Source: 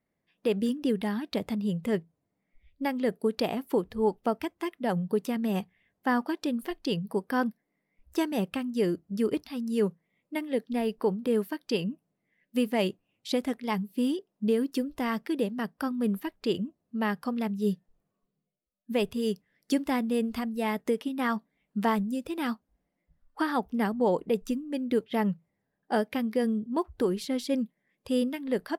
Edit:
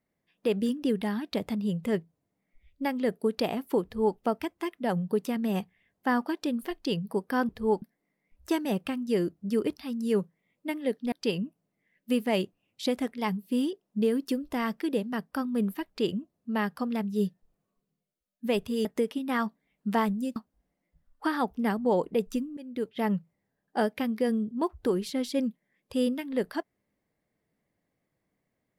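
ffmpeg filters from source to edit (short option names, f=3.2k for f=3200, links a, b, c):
-filter_complex "[0:a]asplit=7[a][b][c][d][e][f][g];[a]atrim=end=7.492[h];[b]atrim=start=3.838:end=4.172[i];[c]atrim=start=7.488:end=10.792[j];[d]atrim=start=11.578:end=19.312[k];[e]atrim=start=20.748:end=22.262[l];[f]atrim=start=22.508:end=24.72,asetpts=PTS-STARTPTS,afade=t=out:st=2.208:d=0.004:c=hsin:silence=0.16788[m];[g]atrim=start=24.72,asetpts=PTS-STARTPTS,afade=t=in:d=0.54:silence=0.16788[n];[h][i]acrossfade=d=0.004:c1=hsin:c2=hsin[o];[o][j]acrossfade=d=0.004:c1=hsin:c2=hsin[p];[p][k]acrossfade=d=0.004:c1=hsin:c2=hsin[q];[q][l]acrossfade=d=0.004:c1=hsin:c2=hsin[r];[m][n]concat=n=2:v=0:a=1[s];[r][s]acrossfade=d=0.004:c1=hsin:c2=hsin"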